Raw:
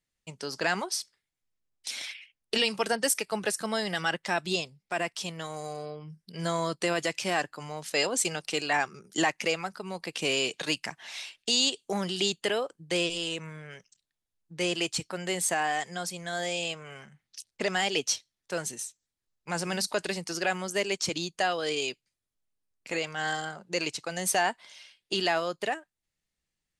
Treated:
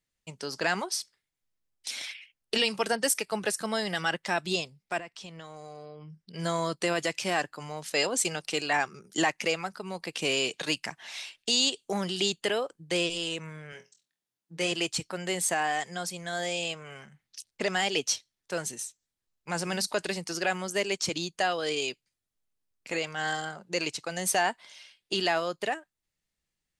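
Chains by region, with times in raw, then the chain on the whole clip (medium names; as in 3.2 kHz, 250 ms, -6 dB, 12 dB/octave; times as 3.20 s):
4.98–6.34 s: distance through air 65 m + compression 2.5:1, threshold -43 dBFS
13.72–14.72 s: high-pass 140 Hz + flutter echo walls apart 4.1 m, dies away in 0.21 s
whole clip: none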